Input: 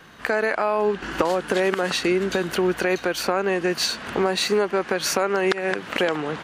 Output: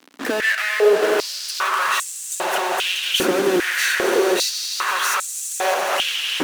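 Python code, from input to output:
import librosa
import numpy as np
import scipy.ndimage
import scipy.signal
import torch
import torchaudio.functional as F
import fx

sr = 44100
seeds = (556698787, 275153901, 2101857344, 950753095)

y = fx.peak_eq(x, sr, hz=4600.0, db=-14.0, octaves=0.46)
y = fx.fuzz(y, sr, gain_db=40.0, gate_db=-41.0)
y = fx.echo_swell(y, sr, ms=84, loudest=5, wet_db=-11.5)
y = fx.filter_held_highpass(y, sr, hz=2.5, low_hz=270.0, high_hz=7700.0)
y = y * librosa.db_to_amplitude(-9.0)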